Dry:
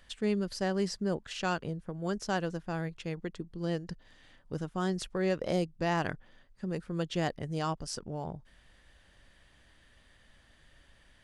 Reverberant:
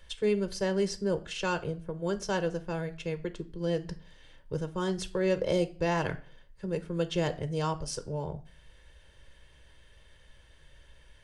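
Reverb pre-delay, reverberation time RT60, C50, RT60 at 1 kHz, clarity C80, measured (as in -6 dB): 6 ms, 0.45 s, 17.5 dB, 0.40 s, 21.5 dB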